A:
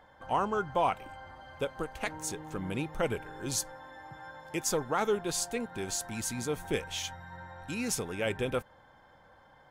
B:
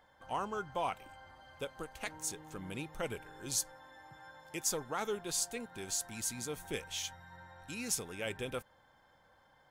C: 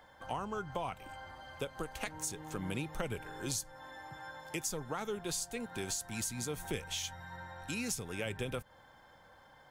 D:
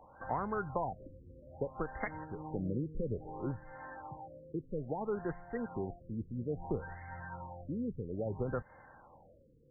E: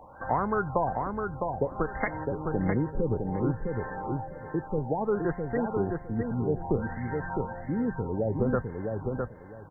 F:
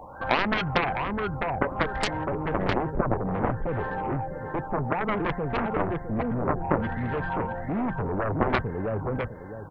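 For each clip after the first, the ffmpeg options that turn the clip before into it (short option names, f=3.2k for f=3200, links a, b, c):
-af "highshelf=f=2.8k:g=8.5,volume=-8.5dB"
-filter_complex "[0:a]acrossover=split=180[a][b];[b]acompressor=threshold=-42dB:ratio=6[c];[a][c]amix=inputs=2:normalize=0,volume=6.5dB"
-af "afftfilt=real='re*lt(b*sr/1024,510*pow(2200/510,0.5+0.5*sin(2*PI*0.6*pts/sr)))':imag='im*lt(b*sr/1024,510*pow(2200/510,0.5+0.5*sin(2*PI*0.6*pts/sr)))':win_size=1024:overlap=0.75,volume=3dB"
-filter_complex "[0:a]asplit=2[a][b];[b]adelay=658,lowpass=f=2k:p=1,volume=-4dB,asplit=2[c][d];[d]adelay=658,lowpass=f=2k:p=1,volume=0.21,asplit=2[e][f];[f]adelay=658,lowpass=f=2k:p=1,volume=0.21[g];[a][c][e][g]amix=inputs=4:normalize=0,volume=8.5dB"
-af "aeval=exprs='0.266*(cos(1*acos(clip(val(0)/0.266,-1,1)))-cos(1*PI/2))+0.106*(cos(7*acos(clip(val(0)/0.266,-1,1)))-cos(7*PI/2))':c=same,volume=1.5dB"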